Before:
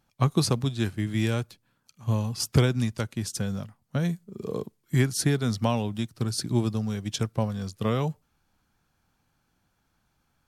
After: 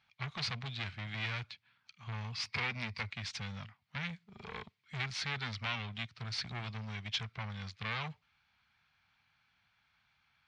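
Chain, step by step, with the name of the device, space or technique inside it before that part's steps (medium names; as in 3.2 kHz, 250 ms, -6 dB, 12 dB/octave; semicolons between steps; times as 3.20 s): 2.45–3.10 s: rippled EQ curve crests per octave 0.89, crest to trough 11 dB; scooped metal amplifier (valve stage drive 31 dB, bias 0.4; cabinet simulation 110–4000 Hz, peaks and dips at 250 Hz +6 dB, 530 Hz -6 dB, 2.2 kHz +7 dB; amplifier tone stack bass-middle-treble 10-0-10); trim +8.5 dB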